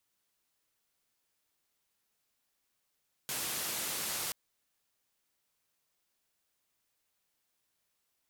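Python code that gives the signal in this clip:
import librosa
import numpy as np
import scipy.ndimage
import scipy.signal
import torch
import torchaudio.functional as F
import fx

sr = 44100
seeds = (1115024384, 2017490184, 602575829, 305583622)

y = fx.band_noise(sr, seeds[0], length_s=1.03, low_hz=92.0, high_hz=15000.0, level_db=-36.5)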